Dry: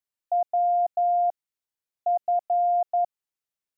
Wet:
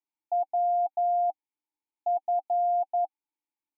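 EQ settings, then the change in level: vowel filter u; bell 630 Hz +12 dB 1.4 oct; notch 770 Hz, Q 12; +7.0 dB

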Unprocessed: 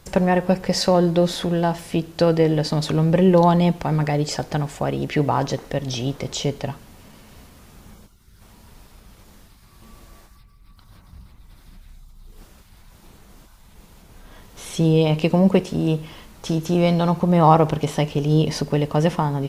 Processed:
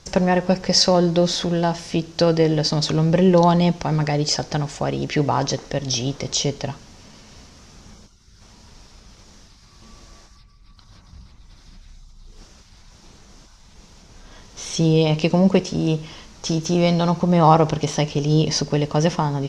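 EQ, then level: synth low-pass 5800 Hz, resonance Q 3.3; 0.0 dB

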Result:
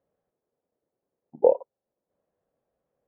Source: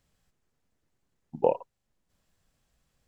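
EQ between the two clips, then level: band-pass 520 Hz, Q 2.3; air absorption 340 m; +7.5 dB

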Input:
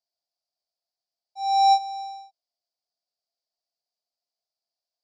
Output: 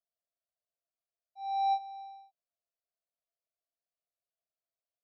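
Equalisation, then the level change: air absorption 240 m; bell 3200 Hz -8 dB; fixed phaser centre 1300 Hz, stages 8; -1.5 dB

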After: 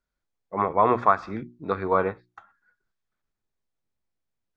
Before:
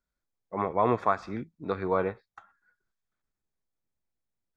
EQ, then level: notches 60/120/180/240/300/360 Hz; dynamic EQ 1200 Hz, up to +5 dB, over -38 dBFS, Q 1.4; air absorption 61 m; +3.0 dB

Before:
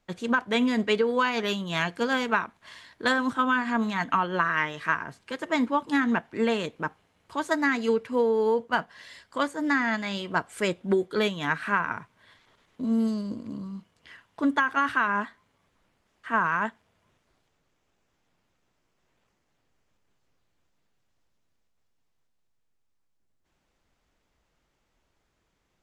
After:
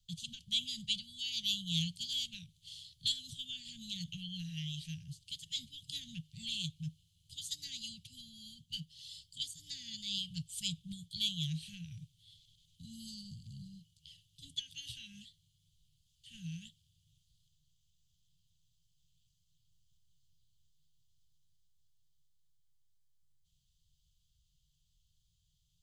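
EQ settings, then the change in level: Chebyshev band-stop 160–3100 Hz, order 5; notch 5500 Hz, Q 14; +2.0 dB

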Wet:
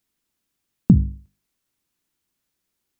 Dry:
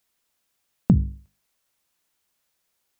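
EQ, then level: resonant low shelf 420 Hz +7 dB, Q 1.5; -4.0 dB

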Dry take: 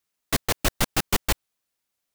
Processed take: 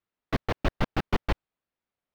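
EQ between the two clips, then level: air absorption 310 m; bell 3200 Hz -3.5 dB 2.7 oct; 0.0 dB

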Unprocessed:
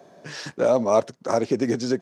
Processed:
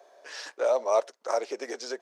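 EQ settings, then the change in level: HPF 470 Hz 24 dB/oct; -4.0 dB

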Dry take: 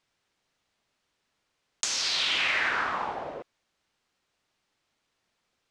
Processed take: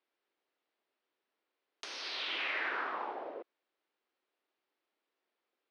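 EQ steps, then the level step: running mean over 6 samples; ladder high-pass 280 Hz, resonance 40%; 0.0 dB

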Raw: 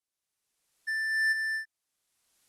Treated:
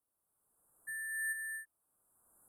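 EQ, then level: inverse Chebyshev band-stop 2100–6000 Hz, stop band 40 dB; notch 5400 Hz, Q 5.5; +6.5 dB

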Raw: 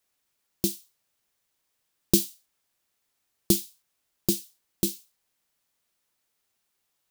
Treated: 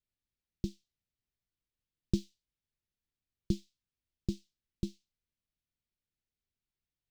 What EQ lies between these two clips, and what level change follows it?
air absorption 170 m; passive tone stack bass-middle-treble 10-0-1; +9.5 dB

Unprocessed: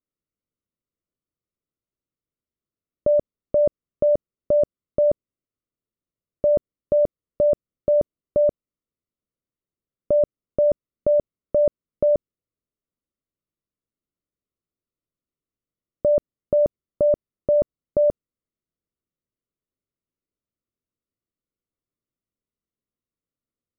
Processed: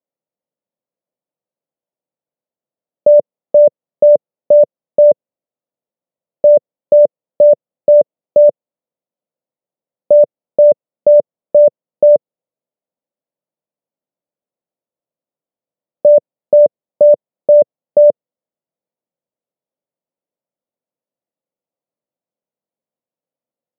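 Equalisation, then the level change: HPF 140 Hz 24 dB/oct; air absorption 410 m; band shelf 680 Hz +12.5 dB 1.1 oct; 0.0 dB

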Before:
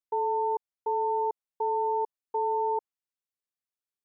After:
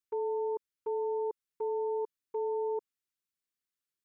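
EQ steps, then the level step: Butterworth band-stop 720 Hz, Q 1; +1.5 dB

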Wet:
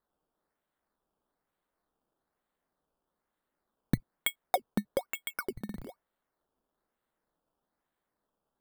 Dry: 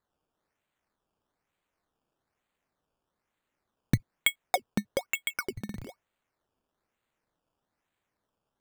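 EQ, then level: fifteen-band EQ 100 Hz -11 dB, 2500 Hz -10 dB, 6300 Hz -12 dB; 0.0 dB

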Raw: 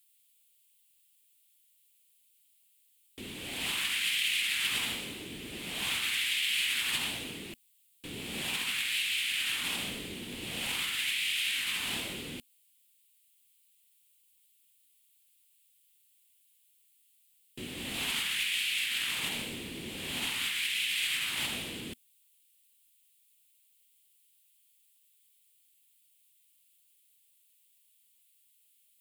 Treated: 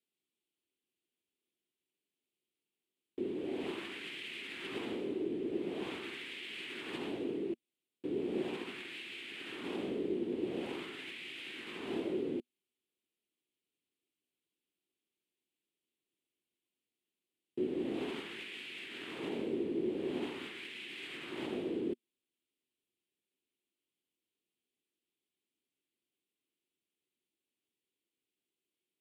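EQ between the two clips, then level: band-pass 370 Hz, Q 3.9; +14.5 dB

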